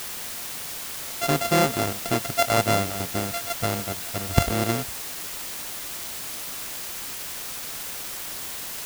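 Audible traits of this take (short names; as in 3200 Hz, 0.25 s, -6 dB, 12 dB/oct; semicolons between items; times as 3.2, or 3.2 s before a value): a buzz of ramps at a fixed pitch in blocks of 64 samples; chopped level 2 Hz, depth 60%, duty 85%; a quantiser's noise floor 6-bit, dither triangular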